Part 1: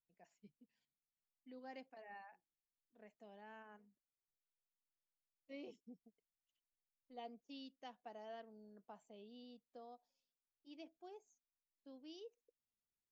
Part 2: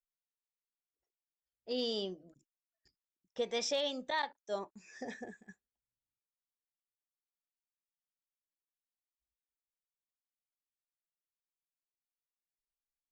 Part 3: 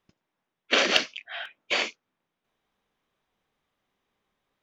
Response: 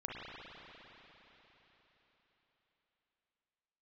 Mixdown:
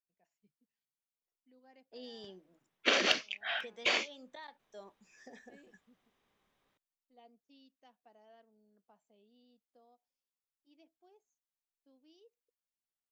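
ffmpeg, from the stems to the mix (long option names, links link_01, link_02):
-filter_complex "[0:a]volume=-9.5dB[link_01];[1:a]lowshelf=frequency=180:gain=-11,acrossover=split=280[link_02][link_03];[link_03]acompressor=threshold=-48dB:ratio=2[link_04];[link_02][link_04]amix=inputs=2:normalize=0,adelay=250,volume=-6dB[link_05];[2:a]adelay=2150,volume=0.5dB[link_06];[link_01][link_05][link_06]amix=inputs=3:normalize=0,acompressor=threshold=-30dB:ratio=2"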